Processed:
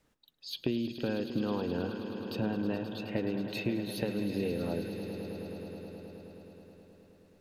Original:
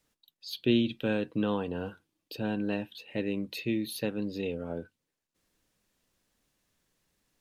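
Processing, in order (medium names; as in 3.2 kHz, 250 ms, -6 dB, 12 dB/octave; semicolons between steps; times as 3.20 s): treble shelf 2.7 kHz -10.5 dB; compression, threshold -36 dBFS, peak gain reduction 15 dB; echo with a slow build-up 106 ms, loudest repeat 5, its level -13.5 dB; trim +6.5 dB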